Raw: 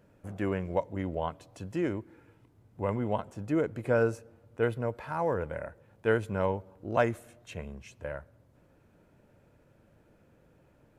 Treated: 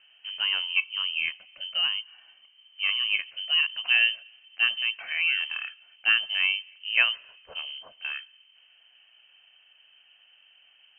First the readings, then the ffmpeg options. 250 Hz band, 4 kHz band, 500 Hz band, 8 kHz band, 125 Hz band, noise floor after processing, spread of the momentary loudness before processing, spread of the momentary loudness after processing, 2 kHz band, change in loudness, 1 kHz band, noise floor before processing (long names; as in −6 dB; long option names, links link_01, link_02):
below −30 dB, +30.0 dB, −25.0 dB, can't be measured, below −30 dB, −60 dBFS, 15 LU, 14 LU, +14.5 dB, +7.0 dB, −8.5 dB, −64 dBFS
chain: -af "lowpass=frequency=2700:width_type=q:width=0.5098,lowpass=frequency=2700:width_type=q:width=0.6013,lowpass=frequency=2700:width_type=q:width=0.9,lowpass=frequency=2700:width_type=q:width=2.563,afreqshift=-3200,volume=3.5dB"